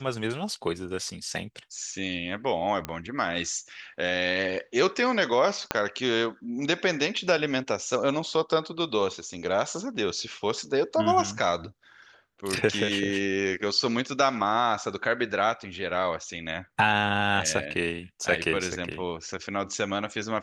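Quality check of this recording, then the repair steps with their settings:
0:02.85: click −15 dBFS
0:05.71: click −8 dBFS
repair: click removal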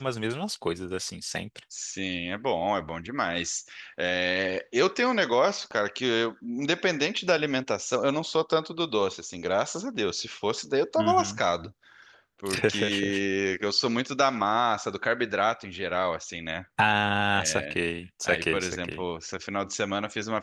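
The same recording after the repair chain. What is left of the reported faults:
0:02.85: click
0:05.71: click

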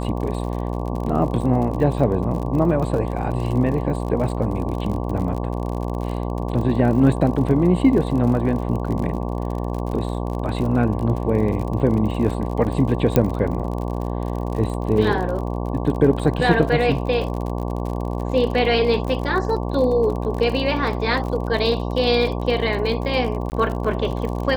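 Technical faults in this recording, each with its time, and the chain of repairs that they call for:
mains buzz 60 Hz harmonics 19 −25 dBFS
surface crackle 48 per second −28 dBFS
0:13.16: click −4 dBFS
0:23.50–0:23.52: drop-out 19 ms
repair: click removal
hum removal 60 Hz, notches 19
repair the gap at 0:23.50, 19 ms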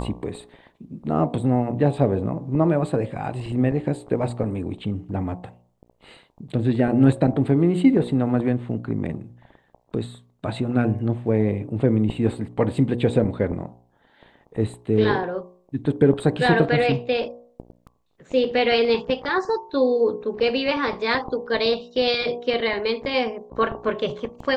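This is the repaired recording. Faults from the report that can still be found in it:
none of them is left

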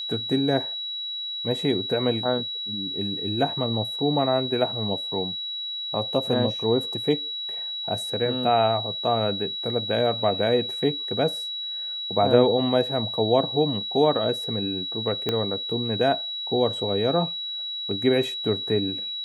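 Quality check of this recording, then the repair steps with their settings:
whistle 3,900 Hz −29 dBFS
0:15.29: click −11 dBFS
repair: click removal
notch filter 3,900 Hz, Q 30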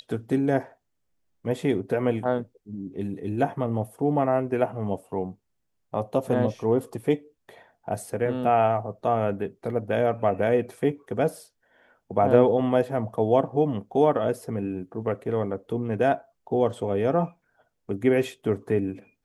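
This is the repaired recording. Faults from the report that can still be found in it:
0:15.29: click

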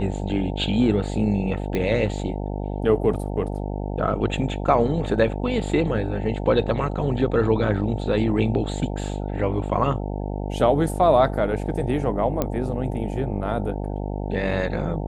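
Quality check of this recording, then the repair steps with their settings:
mains buzz 50 Hz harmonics 18 −28 dBFS
0:01.75: click −13 dBFS
0:12.42: click −9 dBFS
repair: click removal
hum removal 50 Hz, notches 18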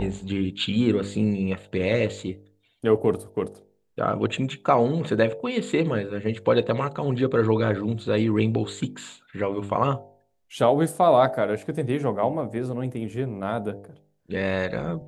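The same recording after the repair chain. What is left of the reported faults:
none of them is left

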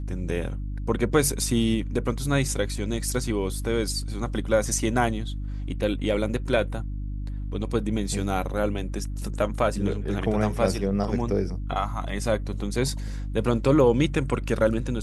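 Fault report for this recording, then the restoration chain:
mains hum 50 Hz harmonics 6 −31 dBFS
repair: hum removal 50 Hz, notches 6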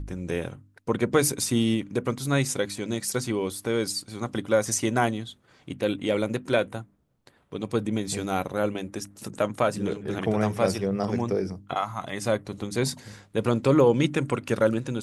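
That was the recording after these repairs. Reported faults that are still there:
none of them is left

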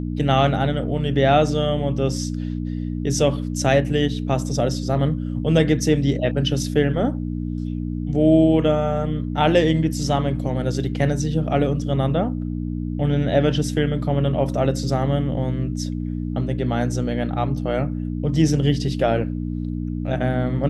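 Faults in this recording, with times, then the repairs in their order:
mains hum 60 Hz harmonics 5 −26 dBFS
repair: hum removal 60 Hz, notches 5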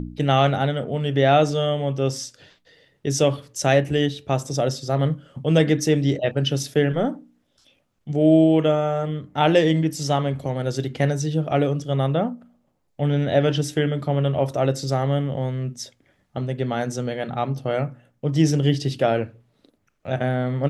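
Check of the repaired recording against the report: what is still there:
none of them is left

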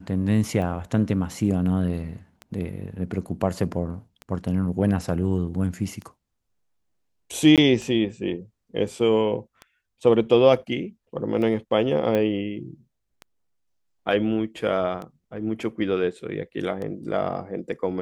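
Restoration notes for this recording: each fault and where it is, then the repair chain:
scratch tick 33 1/3 rpm −22 dBFS
0:07.56–0:07.58: drop-out 17 ms
0:12.15: click −13 dBFS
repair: click removal
repair the gap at 0:07.56, 17 ms

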